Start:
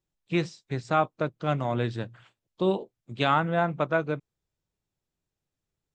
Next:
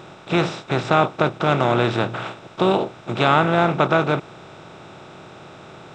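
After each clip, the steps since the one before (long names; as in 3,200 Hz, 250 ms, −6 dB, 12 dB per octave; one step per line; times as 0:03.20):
compressor on every frequency bin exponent 0.4
level +3.5 dB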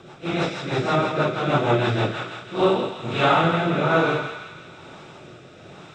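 random phases in long frames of 200 ms
rotating-speaker cabinet horn 6.3 Hz, later 1.1 Hz, at 0:02.05
on a send: feedback echo with a high-pass in the loop 165 ms, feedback 62%, high-pass 1,100 Hz, level −6 dB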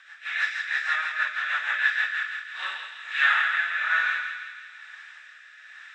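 four-pole ladder high-pass 1,700 Hz, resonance 90%
level +7.5 dB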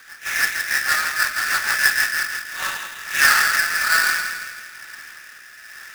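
each half-wave held at its own peak
level +3 dB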